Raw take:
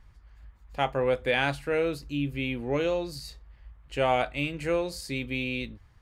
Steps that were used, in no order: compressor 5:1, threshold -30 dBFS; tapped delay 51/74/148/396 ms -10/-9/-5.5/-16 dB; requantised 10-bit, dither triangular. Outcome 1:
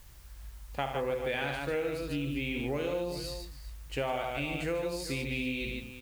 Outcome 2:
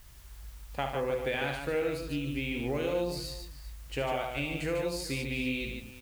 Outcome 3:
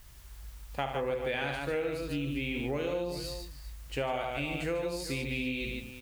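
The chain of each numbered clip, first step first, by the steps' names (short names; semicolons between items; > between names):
tapped delay > compressor > requantised; compressor > requantised > tapped delay; requantised > tapped delay > compressor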